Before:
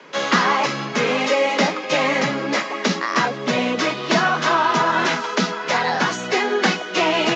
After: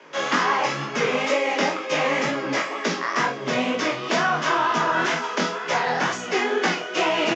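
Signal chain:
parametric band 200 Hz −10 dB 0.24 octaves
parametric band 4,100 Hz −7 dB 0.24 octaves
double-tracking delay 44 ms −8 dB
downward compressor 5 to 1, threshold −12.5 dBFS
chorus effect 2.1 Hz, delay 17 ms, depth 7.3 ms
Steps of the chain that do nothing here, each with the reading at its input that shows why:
all steps act on this source

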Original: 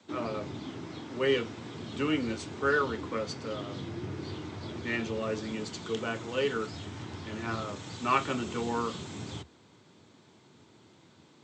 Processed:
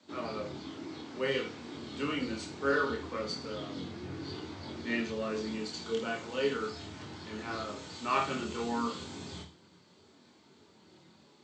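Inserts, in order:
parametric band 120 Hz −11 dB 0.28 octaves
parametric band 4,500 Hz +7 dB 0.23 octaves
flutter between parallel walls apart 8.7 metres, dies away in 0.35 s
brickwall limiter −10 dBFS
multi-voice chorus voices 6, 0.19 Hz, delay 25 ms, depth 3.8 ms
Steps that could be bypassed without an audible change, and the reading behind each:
brickwall limiter −10 dBFS: peak of its input −12.0 dBFS

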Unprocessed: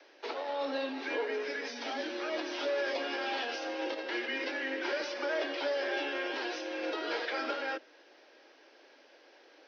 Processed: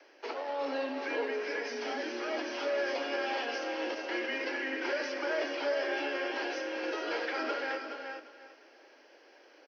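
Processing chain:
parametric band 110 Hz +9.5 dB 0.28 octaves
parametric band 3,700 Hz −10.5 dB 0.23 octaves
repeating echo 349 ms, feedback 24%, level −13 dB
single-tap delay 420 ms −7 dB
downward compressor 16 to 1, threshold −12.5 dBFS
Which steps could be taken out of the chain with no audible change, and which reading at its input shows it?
parametric band 110 Hz: nothing at its input below 230 Hz
downward compressor, threshold −12.5 dBFS: peak of its input −21.0 dBFS

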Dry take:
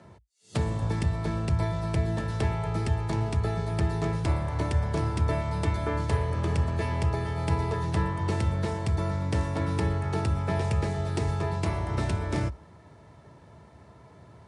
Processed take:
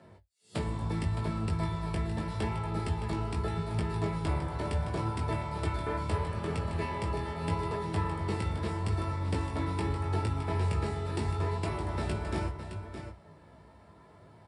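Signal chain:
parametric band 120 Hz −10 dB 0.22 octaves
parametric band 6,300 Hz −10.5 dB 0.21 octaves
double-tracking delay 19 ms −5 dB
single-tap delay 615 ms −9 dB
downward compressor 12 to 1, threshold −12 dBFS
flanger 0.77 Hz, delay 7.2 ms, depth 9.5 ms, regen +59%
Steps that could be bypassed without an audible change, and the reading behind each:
downward compressor, threshold −12 dBFS: peak of its input −13.5 dBFS

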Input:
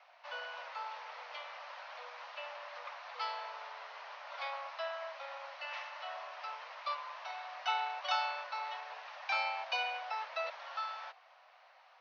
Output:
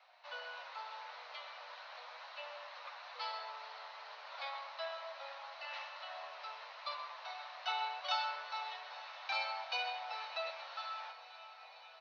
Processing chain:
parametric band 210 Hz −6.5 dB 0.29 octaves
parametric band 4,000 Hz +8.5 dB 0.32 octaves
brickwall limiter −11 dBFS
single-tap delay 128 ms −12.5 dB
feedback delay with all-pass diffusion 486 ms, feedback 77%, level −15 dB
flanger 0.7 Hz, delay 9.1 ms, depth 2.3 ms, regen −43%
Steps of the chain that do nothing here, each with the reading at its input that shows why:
parametric band 210 Hz: nothing at its input below 430 Hz
brickwall limiter −11 dBFS: peak of its input −19.0 dBFS

